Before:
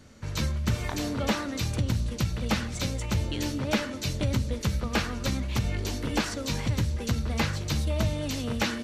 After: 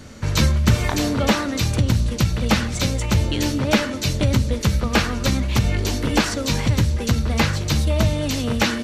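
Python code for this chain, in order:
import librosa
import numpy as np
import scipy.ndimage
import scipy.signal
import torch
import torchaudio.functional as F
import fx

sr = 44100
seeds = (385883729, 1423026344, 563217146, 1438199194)

y = fx.rider(x, sr, range_db=10, speed_s=2.0)
y = y * librosa.db_to_amplitude(8.5)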